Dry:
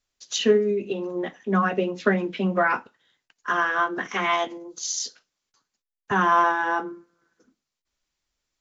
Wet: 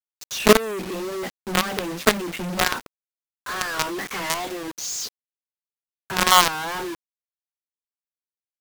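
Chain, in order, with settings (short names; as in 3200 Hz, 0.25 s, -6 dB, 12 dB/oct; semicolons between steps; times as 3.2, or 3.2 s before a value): companded quantiser 2-bit; wow and flutter 130 cents; gain -3 dB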